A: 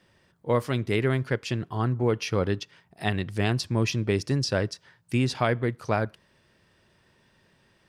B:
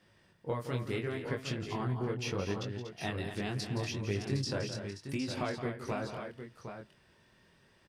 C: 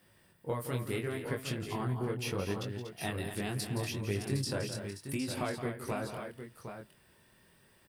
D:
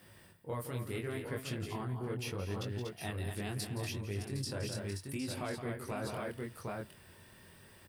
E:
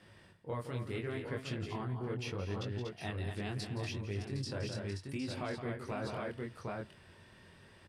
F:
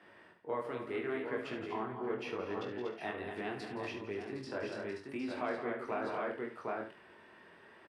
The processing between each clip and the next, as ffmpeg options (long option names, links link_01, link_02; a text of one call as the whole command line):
ffmpeg -i in.wav -filter_complex "[0:a]acompressor=threshold=-29dB:ratio=6,flanger=delay=19:depth=5:speed=0.75,asplit=2[link_01][link_02];[link_02]aecho=0:1:170|239|761:0.299|0.335|0.376[link_03];[link_01][link_03]amix=inputs=2:normalize=0" out.wav
ffmpeg -i in.wav -af "aexciter=amount=3.7:drive=8:freq=8400" out.wav
ffmpeg -i in.wav -af "equalizer=frequency=93:width_type=o:width=0.22:gain=8.5,areverse,acompressor=threshold=-42dB:ratio=6,areverse,volume=6dB" out.wav
ffmpeg -i in.wav -af "lowpass=5600" out.wav
ffmpeg -i in.wav -filter_complex "[0:a]acrossover=split=260 2500:gain=0.0708 1 0.158[link_01][link_02][link_03];[link_01][link_02][link_03]amix=inputs=3:normalize=0,bandreject=frequency=530:width=12,asplit=2[link_04][link_05];[link_05]aecho=0:1:46|73:0.299|0.299[link_06];[link_04][link_06]amix=inputs=2:normalize=0,volume=4.5dB" out.wav